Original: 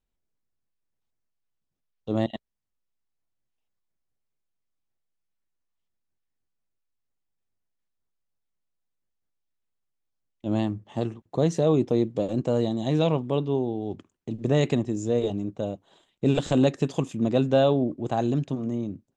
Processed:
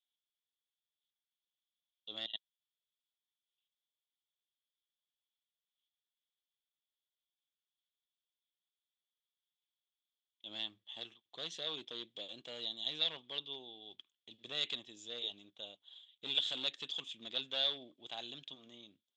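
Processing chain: overloaded stage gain 15 dB; band-pass 3400 Hz, Q 12; gain +12.5 dB

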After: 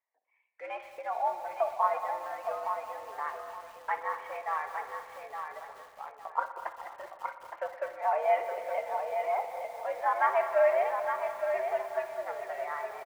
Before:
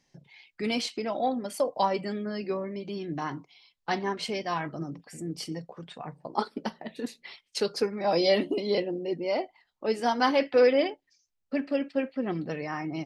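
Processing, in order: mistuned SSB +110 Hz 510–2000 Hz; in parallel at -7.5 dB: crossover distortion -48.5 dBFS; on the sum: gate -49 dBFS, range -10 dB; on a send: feedback echo 0.865 s, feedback 24%, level -6.5 dB; on the sum: spring tank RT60 2.2 s, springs 59 ms, chirp 25 ms, DRR 9.5 dB; lo-fi delay 0.207 s, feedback 80%, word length 7-bit, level -14.5 dB; gain -4 dB

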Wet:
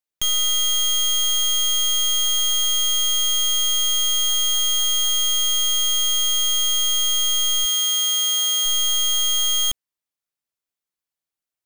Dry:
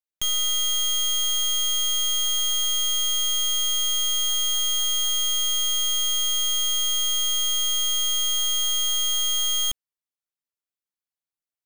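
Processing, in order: 7.64–8.65 HPF 760 Hz -> 310 Hz 12 dB/oct; gain +3.5 dB

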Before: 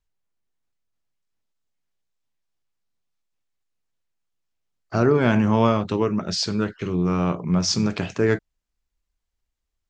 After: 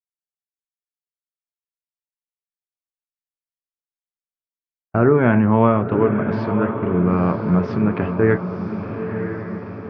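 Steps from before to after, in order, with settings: gate -29 dBFS, range -51 dB; LPF 2100 Hz 24 dB/oct; diffused feedback echo 0.975 s, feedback 59%, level -8 dB; gain +3.5 dB

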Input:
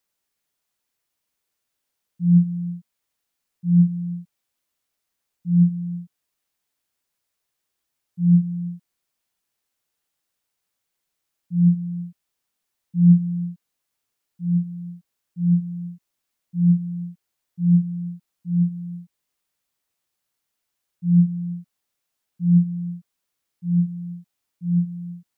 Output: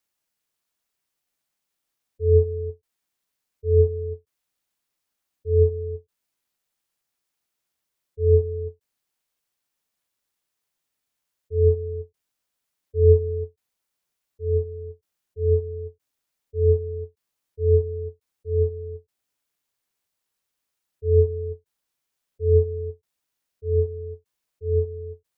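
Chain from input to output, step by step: spectral gate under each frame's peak -30 dB strong; ring modulator 260 Hz; ending taper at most 400 dB/s; gain +1.5 dB

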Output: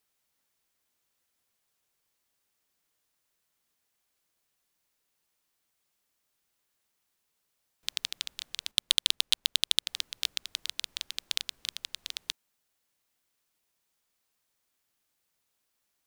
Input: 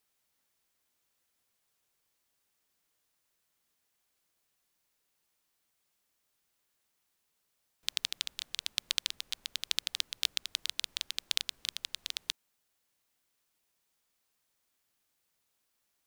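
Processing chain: 8.71–9.87 sample leveller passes 5

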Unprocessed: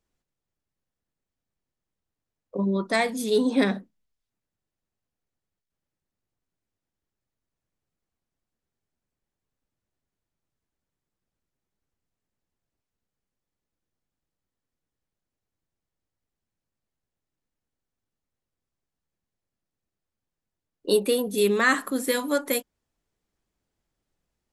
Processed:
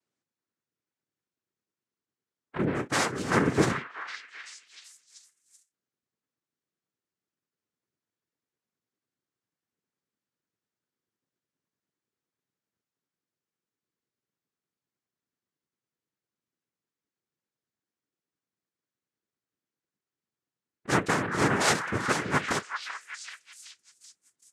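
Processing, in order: noise vocoder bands 3; delay with a stepping band-pass 0.383 s, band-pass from 1400 Hz, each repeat 0.7 oct, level -5 dB; gain -3 dB

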